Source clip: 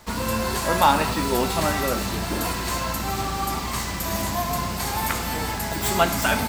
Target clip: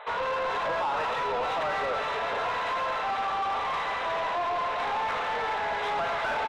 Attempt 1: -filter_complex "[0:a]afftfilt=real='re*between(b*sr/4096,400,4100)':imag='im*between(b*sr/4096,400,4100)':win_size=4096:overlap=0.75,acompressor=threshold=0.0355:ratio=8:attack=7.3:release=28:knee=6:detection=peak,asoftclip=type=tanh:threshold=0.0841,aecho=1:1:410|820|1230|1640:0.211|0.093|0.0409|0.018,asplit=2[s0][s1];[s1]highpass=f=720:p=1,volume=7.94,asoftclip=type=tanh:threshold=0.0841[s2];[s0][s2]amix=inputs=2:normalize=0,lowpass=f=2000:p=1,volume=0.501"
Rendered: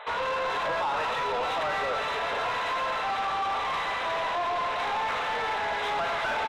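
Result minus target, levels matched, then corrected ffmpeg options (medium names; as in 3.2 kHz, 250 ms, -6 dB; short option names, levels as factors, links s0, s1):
4 kHz band +2.5 dB
-filter_complex "[0:a]afftfilt=real='re*between(b*sr/4096,400,4100)':imag='im*between(b*sr/4096,400,4100)':win_size=4096:overlap=0.75,acompressor=threshold=0.0355:ratio=8:attack=7.3:release=28:knee=6:detection=peak,highshelf=f=2700:g=-7.5,asoftclip=type=tanh:threshold=0.0841,aecho=1:1:410|820|1230|1640:0.211|0.093|0.0409|0.018,asplit=2[s0][s1];[s1]highpass=f=720:p=1,volume=7.94,asoftclip=type=tanh:threshold=0.0841[s2];[s0][s2]amix=inputs=2:normalize=0,lowpass=f=2000:p=1,volume=0.501"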